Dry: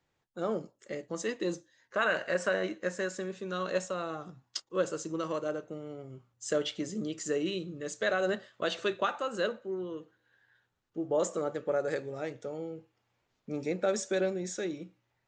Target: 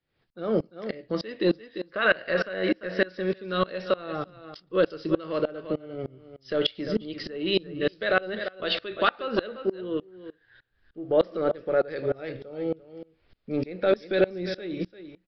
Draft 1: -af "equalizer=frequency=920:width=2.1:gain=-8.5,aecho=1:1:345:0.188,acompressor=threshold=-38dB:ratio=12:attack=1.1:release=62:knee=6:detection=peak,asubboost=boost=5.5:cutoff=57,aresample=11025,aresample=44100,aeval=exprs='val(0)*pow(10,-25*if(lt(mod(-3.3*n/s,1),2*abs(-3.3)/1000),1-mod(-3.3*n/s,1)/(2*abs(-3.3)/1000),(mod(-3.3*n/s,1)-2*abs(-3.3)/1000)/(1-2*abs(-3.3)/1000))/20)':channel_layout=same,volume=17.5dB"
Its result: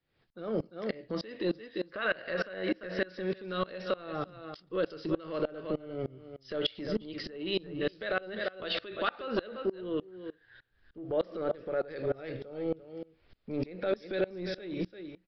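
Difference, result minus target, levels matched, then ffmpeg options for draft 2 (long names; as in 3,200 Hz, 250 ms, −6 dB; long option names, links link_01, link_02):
downward compressor: peak gain reduction +9 dB
-af "equalizer=frequency=920:width=2.1:gain=-8.5,aecho=1:1:345:0.188,acompressor=threshold=-28dB:ratio=12:attack=1.1:release=62:knee=6:detection=peak,asubboost=boost=5.5:cutoff=57,aresample=11025,aresample=44100,aeval=exprs='val(0)*pow(10,-25*if(lt(mod(-3.3*n/s,1),2*abs(-3.3)/1000),1-mod(-3.3*n/s,1)/(2*abs(-3.3)/1000),(mod(-3.3*n/s,1)-2*abs(-3.3)/1000)/(1-2*abs(-3.3)/1000))/20)':channel_layout=same,volume=17.5dB"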